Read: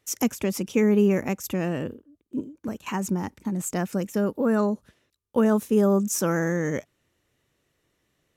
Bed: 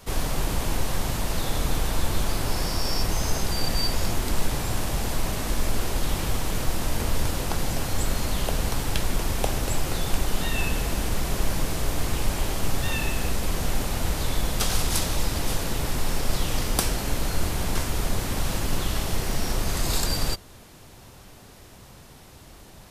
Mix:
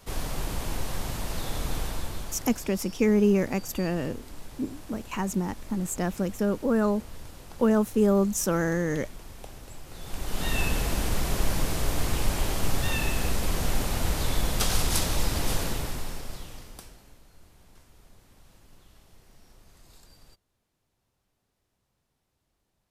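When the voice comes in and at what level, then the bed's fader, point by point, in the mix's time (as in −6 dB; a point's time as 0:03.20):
2.25 s, −1.5 dB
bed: 0:01.82 −5.5 dB
0:02.74 −18.5 dB
0:09.86 −18.5 dB
0:10.50 −1 dB
0:15.63 −1 dB
0:17.24 −30 dB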